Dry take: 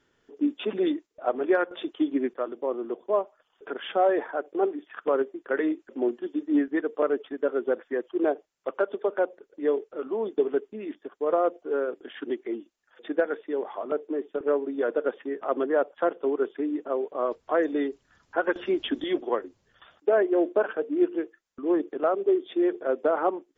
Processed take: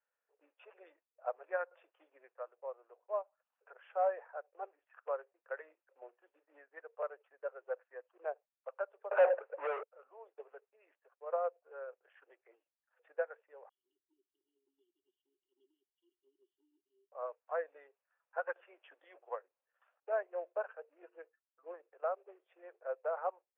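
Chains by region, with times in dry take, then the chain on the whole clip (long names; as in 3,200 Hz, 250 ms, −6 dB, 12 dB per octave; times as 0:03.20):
0:09.11–0:09.83: drawn EQ curve 310 Hz 0 dB, 610 Hz +5 dB, 3,400 Hz −2 dB + mid-hump overdrive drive 40 dB, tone 1,000 Hz, clips at −9.5 dBFS
0:13.69–0:17.12: linear-phase brick-wall band-stop 390–2,800 Hz + multiband upward and downward expander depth 40%
0:21.02–0:21.74: comb filter 6.2 ms, depth 74% + one half of a high-frequency compander decoder only
whole clip: Chebyshev band-pass filter 510–2,600 Hz, order 4; parametric band 2,100 Hz −4 dB 0.43 octaves; expander for the loud parts 1.5 to 1, over −39 dBFS; level −6.5 dB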